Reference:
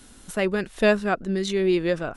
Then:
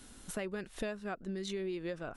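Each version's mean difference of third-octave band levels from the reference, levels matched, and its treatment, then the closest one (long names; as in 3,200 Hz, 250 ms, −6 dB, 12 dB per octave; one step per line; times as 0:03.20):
4.0 dB: downward compressor 10 to 1, threshold −30 dBFS, peak gain reduction 16.5 dB
level −5 dB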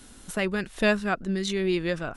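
2.5 dB: dynamic equaliser 480 Hz, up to −6 dB, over −32 dBFS, Q 0.8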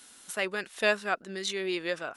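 5.5 dB: high-pass filter 1,300 Hz 6 dB per octave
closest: second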